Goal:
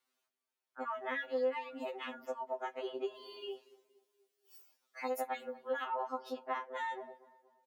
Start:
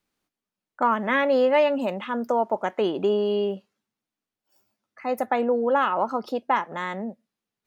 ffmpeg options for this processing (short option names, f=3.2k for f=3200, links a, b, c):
-filter_complex "[0:a]asplit=3[a][b][c];[a]afade=t=out:st=3.14:d=0.02[d];[b]highshelf=f=2.4k:g=10,afade=t=in:st=3.14:d=0.02,afade=t=out:st=5.83:d=0.02[e];[c]afade=t=in:st=5.83:d=0.02[f];[d][e][f]amix=inputs=3:normalize=0,acompressor=threshold=-32dB:ratio=6,highpass=410,asplit=2[g][h];[h]adelay=237,lowpass=f=1.5k:p=1,volume=-19dB,asplit=2[i][j];[j]adelay=237,lowpass=f=1.5k:p=1,volume=0.52,asplit=2[k][l];[l]adelay=237,lowpass=f=1.5k:p=1,volume=0.52,asplit=2[m][n];[n]adelay=237,lowpass=f=1.5k:p=1,volume=0.52[o];[g][i][k][m][o]amix=inputs=5:normalize=0,afftfilt=real='re*2.45*eq(mod(b,6),0)':imag='im*2.45*eq(mod(b,6),0)':win_size=2048:overlap=0.75"